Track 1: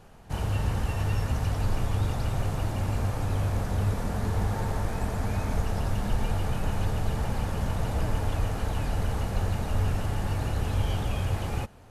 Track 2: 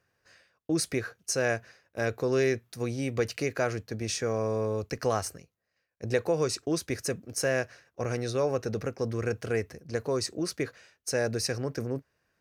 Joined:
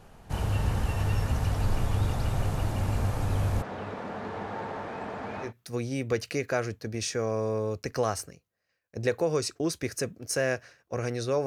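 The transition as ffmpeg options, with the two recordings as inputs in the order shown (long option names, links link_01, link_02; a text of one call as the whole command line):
ffmpeg -i cue0.wav -i cue1.wav -filter_complex "[0:a]asplit=3[link_01][link_02][link_03];[link_01]afade=type=out:start_time=3.61:duration=0.02[link_04];[link_02]highpass=280,lowpass=2900,afade=type=in:start_time=3.61:duration=0.02,afade=type=out:start_time=5.53:duration=0.02[link_05];[link_03]afade=type=in:start_time=5.53:duration=0.02[link_06];[link_04][link_05][link_06]amix=inputs=3:normalize=0,apad=whole_dur=11.46,atrim=end=11.46,atrim=end=5.53,asetpts=PTS-STARTPTS[link_07];[1:a]atrim=start=2.48:end=8.53,asetpts=PTS-STARTPTS[link_08];[link_07][link_08]acrossfade=duration=0.12:curve1=tri:curve2=tri" out.wav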